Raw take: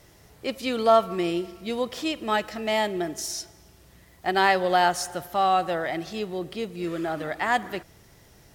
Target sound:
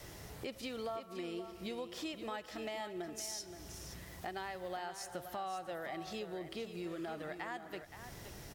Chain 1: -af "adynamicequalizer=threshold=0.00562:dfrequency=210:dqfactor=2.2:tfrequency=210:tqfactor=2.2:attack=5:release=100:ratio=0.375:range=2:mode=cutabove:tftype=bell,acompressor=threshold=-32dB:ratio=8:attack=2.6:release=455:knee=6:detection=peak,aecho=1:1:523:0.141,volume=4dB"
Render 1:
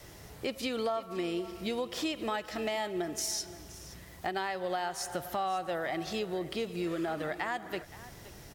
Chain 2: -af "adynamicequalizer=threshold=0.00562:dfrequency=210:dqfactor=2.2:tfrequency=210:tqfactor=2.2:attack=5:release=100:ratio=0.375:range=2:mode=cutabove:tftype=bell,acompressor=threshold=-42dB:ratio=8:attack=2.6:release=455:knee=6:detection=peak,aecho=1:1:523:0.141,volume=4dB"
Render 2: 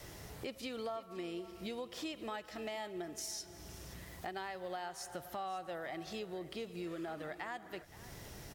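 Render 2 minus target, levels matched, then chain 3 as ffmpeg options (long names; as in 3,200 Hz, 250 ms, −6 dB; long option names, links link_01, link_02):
echo-to-direct −7 dB
-af "adynamicequalizer=threshold=0.00562:dfrequency=210:dqfactor=2.2:tfrequency=210:tqfactor=2.2:attack=5:release=100:ratio=0.375:range=2:mode=cutabove:tftype=bell,acompressor=threshold=-42dB:ratio=8:attack=2.6:release=455:knee=6:detection=peak,aecho=1:1:523:0.316,volume=4dB"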